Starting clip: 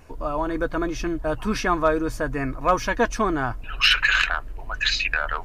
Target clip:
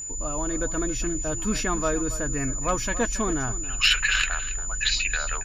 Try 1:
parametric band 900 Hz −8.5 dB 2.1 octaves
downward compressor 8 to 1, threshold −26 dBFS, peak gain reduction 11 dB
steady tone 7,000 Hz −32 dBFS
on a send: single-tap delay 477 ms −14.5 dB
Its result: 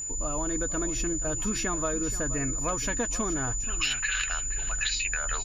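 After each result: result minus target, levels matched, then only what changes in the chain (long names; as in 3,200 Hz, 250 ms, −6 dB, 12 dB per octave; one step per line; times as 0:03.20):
echo 201 ms late; downward compressor: peak gain reduction +11 dB
change: single-tap delay 276 ms −14.5 dB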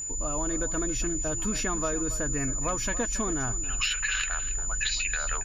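downward compressor: peak gain reduction +11 dB
remove: downward compressor 8 to 1, threshold −26 dBFS, peak gain reduction 11 dB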